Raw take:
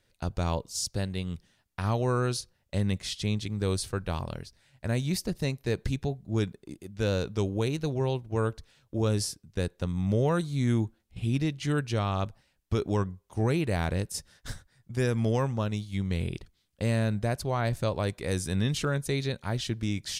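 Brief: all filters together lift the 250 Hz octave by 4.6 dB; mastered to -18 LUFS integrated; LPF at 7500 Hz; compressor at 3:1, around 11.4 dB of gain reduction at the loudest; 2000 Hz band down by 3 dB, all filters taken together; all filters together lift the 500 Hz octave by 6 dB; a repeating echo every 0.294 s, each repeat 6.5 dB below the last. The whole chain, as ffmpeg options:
-af "lowpass=7.5k,equalizer=f=250:t=o:g=4.5,equalizer=f=500:t=o:g=6,equalizer=f=2k:t=o:g=-4.5,acompressor=threshold=-34dB:ratio=3,aecho=1:1:294|588|882|1176|1470|1764:0.473|0.222|0.105|0.0491|0.0231|0.0109,volume=18dB"

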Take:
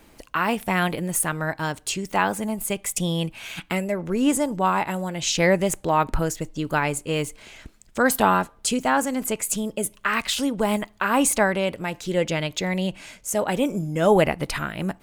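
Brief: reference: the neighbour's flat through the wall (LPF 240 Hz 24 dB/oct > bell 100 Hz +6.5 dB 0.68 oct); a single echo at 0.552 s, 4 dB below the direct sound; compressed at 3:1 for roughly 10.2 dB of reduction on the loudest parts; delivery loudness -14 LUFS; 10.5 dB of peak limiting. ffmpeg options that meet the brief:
-af "acompressor=threshold=-27dB:ratio=3,alimiter=limit=-22dB:level=0:latency=1,lowpass=f=240:w=0.5412,lowpass=f=240:w=1.3066,equalizer=f=100:t=o:w=0.68:g=6.5,aecho=1:1:552:0.631,volume=22.5dB"

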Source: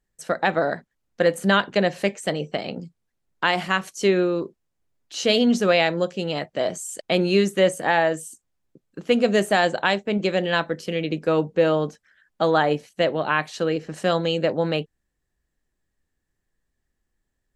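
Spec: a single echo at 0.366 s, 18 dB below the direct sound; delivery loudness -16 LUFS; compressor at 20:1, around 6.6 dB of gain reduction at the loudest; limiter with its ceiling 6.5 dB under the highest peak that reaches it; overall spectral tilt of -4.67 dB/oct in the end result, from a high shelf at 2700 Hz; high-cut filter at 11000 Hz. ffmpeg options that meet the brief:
-af "lowpass=11k,highshelf=f=2.7k:g=-7.5,acompressor=threshold=-20dB:ratio=20,alimiter=limit=-16dB:level=0:latency=1,aecho=1:1:366:0.126,volume=12.5dB"

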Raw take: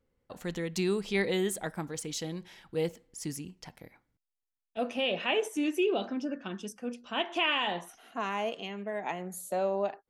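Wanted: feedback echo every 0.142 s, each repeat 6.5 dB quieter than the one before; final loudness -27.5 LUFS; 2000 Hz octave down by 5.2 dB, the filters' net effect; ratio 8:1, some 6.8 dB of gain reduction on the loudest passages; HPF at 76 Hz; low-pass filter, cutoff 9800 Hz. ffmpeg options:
-af "highpass=76,lowpass=9.8k,equalizer=f=2k:t=o:g=-7,acompressor=threshold=-31dB:ratio=8,aecho=1:1:142|284|426|568|710|852:0.473|0.222|0.105|0.0491|0.0231|0.0109,volume=9dB"

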